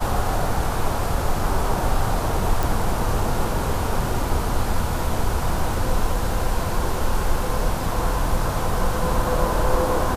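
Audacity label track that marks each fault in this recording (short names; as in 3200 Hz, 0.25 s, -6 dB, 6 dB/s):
2.630000	2.630000	pop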